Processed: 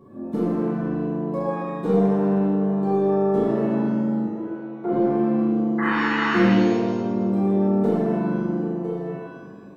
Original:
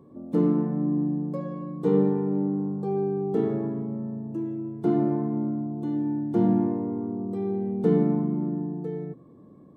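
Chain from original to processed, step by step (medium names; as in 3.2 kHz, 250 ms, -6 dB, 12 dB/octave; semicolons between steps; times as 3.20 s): tracing distortion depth 0.037 ms; 5.78–6.39 s: painted sound noise 800–2100 Hz -31 dBFS; compression, threshold -23 dBFS, peak gain reduction 7 dB; 4.26–4.92 s: three-band isolator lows -15 dB, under 340 Hz, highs -22 dB, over 2.2 kHz; pitch-shifted reverb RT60 1.1 s, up +7 st, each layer -8 dB, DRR -7 dB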